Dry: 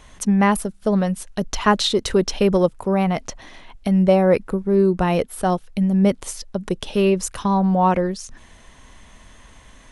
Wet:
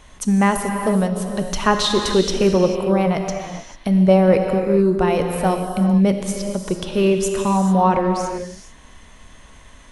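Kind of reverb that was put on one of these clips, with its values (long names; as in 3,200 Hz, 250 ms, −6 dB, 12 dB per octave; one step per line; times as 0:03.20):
reverb whose tail is shaped and stops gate 470 ms flat, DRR 4 dB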